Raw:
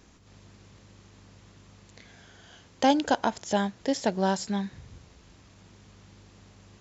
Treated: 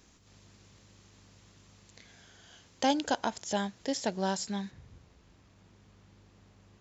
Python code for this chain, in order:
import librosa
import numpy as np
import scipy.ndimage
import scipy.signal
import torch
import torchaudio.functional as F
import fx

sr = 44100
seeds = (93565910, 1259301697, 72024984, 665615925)

y = fx.high_shelf(x, sr, hz=3200.0, db=fx.steps((0.0, 7.0), (4.7, -5.0)))
y = y * librosa.db_to_amplitude(-6.0)